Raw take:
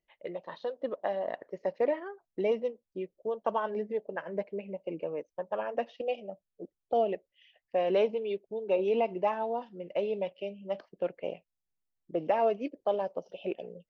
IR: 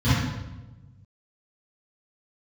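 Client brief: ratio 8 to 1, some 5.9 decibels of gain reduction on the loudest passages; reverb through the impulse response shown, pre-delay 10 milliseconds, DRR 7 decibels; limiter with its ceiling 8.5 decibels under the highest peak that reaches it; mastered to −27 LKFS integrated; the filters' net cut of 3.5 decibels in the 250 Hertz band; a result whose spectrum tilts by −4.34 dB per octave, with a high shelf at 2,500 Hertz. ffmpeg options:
-filter_complex "[0:a]equalizer=frequency=250:width_type=o:gain=-5.5,highshelf=frequency=2500:gain=8,acompressor=threshold=-28dB:ratio=8,alimiter=level_in=3.5dB:limit=-24dB:level=0:latency=1,volume=-3.5dB,asplit=2[link_01][link_02];[1:a]atrim=start_sample=2205,adelay=10[link_03];[link_02][link_03]afir=irnorm=-1:irlink=0,volume=-23.5dB[link_04];[link_01][link_04]amix=inputs=2:normalize=0,volume=10.5dB"

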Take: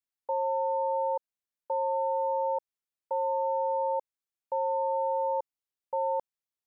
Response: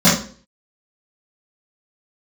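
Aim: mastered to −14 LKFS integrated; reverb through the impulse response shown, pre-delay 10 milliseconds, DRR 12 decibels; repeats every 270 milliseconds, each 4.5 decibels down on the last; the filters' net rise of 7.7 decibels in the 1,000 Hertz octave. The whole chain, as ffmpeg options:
-filter_complex "[0:a]equalizer=frequency=1000:width_type=o:gain=8.5,aecho=1:1:270|540|810|1080|1350|1620|1890|2160|2430:0.596|0.357|0.214|0.129|0.0772|0.0463|0.0278|0.0167|0.01,asplit=2[link_01][link_02];[1:a]atrim=start_sample=2205,adelay=10[link_03];[link_02][link_03]afir=irnorm=-1:irlink=0,volume=-36.5dB[link_04];[link_01][link_04]amix=inputs=2:normalize=0,volume=11dB"

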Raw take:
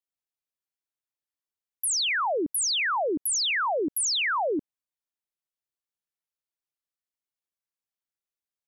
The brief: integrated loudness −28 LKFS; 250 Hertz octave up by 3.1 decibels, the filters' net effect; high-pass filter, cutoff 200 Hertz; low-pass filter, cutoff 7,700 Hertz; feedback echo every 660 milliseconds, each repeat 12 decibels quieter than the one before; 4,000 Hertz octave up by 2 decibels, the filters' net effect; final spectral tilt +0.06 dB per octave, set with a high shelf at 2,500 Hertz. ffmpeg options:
ffmpeg -i in.wav -af "highpass=200,lowpass=7700,equalizer=frequency=250:width_type=o:gain=5.5,highshelf=frequency=2500:gain=-6.5,equalizer=frequency=4000:width_type=o:gain=8.5,aecho=1:1:660|1320|1980:0.251|0.0628|0.0157,volume=-3dB" out.wav

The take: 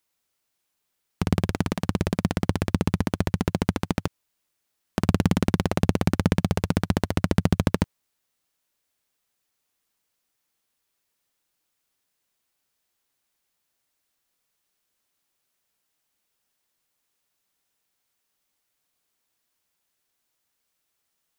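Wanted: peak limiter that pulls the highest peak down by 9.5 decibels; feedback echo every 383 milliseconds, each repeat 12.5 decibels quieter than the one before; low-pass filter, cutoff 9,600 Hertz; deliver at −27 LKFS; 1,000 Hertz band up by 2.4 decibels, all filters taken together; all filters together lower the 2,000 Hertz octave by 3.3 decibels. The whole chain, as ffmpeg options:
ffmpeg -i in.wav -af "lowpass=9600,equalizer=frequency=1000:width_type=o:gain=4.5,equalizer=frequency=2000:width_type=o:gain=-6,alimiter=limit=-12dB:level=0:latency=1,aecho=1:1:383|766|1149:0.237|0.0569|0.0137,volume=3.5dB" out.wav

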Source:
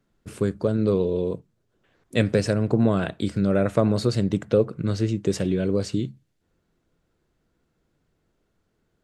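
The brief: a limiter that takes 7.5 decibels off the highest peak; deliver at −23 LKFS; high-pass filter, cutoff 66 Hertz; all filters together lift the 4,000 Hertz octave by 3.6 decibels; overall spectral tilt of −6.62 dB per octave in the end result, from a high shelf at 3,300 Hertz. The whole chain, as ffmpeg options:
ffmpeg -i in.wav -af "highpass=66,highshelf=frequency=3300:gain=-4.5,equalizer=frequency=4000:width_type=o:gain=7.5,volume=3dB,alimiter=limit=-11dB:level=0:latency=1" out.wav

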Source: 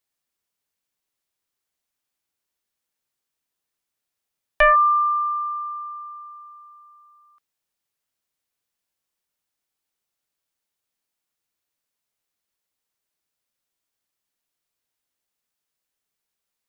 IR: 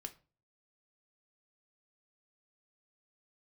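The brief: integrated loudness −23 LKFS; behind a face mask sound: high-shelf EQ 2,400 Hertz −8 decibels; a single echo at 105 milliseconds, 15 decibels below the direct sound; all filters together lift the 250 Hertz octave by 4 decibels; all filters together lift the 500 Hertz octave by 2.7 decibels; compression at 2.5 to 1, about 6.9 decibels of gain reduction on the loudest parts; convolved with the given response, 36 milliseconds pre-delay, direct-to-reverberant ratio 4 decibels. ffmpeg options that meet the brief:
-filter_complex "[0:a]equalizer=frequency=250:width_type=o:gain=4.5,equalizer=frequency=500:width_type=o:gain=3.5,acompressor=threshold=-21dB:ratio=2.5,aecho=1:1:105:0.178,asplit=2[link_01][link_02];[1:a]atrim=start_sample=2205,adelay=36[link_03];[link_02][link_03]afir=irnorm=-1:irlink=0,volume=0dB[link_04];[link_01][link_04]amix=inputs=2:normalize=0,highshelf=frequency=2400:gain=-8,volume=-2dB"

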